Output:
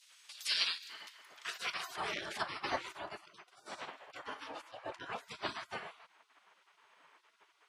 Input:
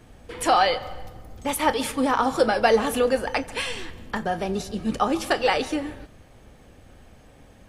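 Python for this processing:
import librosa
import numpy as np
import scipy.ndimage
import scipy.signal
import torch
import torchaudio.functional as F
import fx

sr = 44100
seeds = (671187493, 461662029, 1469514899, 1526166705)

y = fx.high_shelf(x, sr, hz=2400.0, db=-8.0, at=(4.71, 5.18))
y = fx.spec_gate(y, sr, threshold_db=-25, keep='weak')
y = fx.filter_sweep_bandpass(y, sr, from_hz=5100.0, to_hz=680.0, start_s=0.86, end_s=2.18, q=0.71)
y = fx.transient(y, sr, attack_db=0, sustain_db=12, at=(1.82, 2.41), fade=0.02)
y = fx.upward_expand(y, sr, threshold_db=-39.0, expansion=2.5, at=(2.91, 3.65), fade=0.02)
y = F.gain(torch.from_numpy(y), 4.5).numpy()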